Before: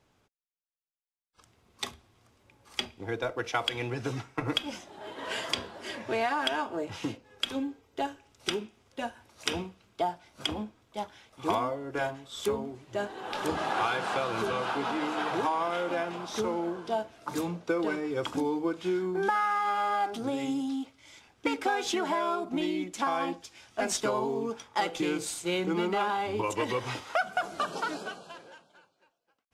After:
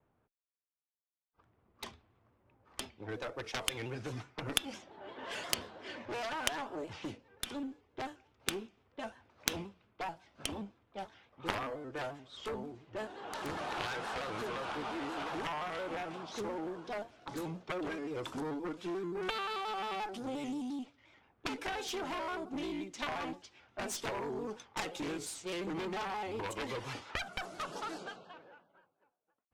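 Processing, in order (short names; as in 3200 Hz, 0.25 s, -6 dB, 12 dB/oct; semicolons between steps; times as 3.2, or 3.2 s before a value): low-pass opened by the level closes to 1400 Hz, open at -29.5 dBFS; added harmonics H 3 -7 dB, 4 -29 dB, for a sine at -13 dBFS; shaped vibrato square 5.7 Hz, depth 100 cents; gain +3.5 dB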